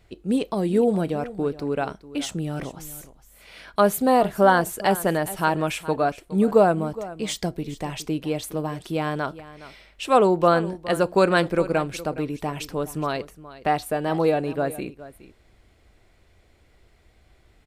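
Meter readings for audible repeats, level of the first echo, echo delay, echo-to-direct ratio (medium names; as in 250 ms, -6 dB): 1, -16.5 dB, 416 ms, -16.5 dB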